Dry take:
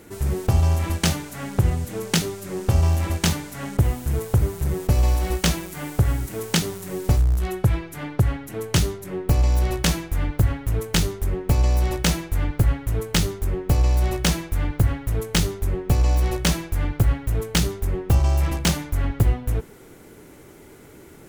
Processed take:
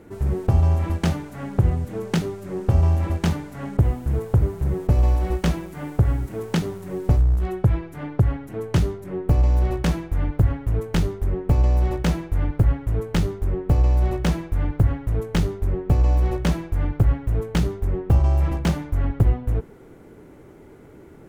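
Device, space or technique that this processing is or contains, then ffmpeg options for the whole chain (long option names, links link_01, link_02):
through cloth: -af "highshelf=frequency=2400:gain=-16,volume=1dB"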